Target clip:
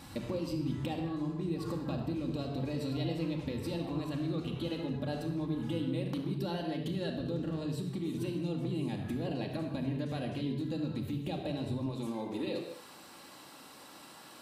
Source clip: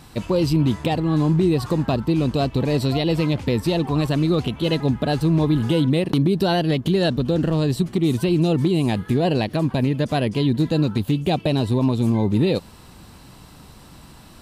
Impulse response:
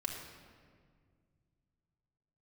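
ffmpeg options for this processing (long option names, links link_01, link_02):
-filter_complex "[0:a]asetnsamples=nb_out_samples=441:pad=0,asendcmd='11.86 highpass f 390',highpass=56,acompressor=threshold=-31dB:ratio=6[link_01];[1:a]atrim=start_sample=2205,afade=type=out:start_time=0.28:duration=0.01,atrim=end_sample=12789[link_02];[link_01][link_02]afir=irnorm=-1:irlink=0,volume=-3.5dB"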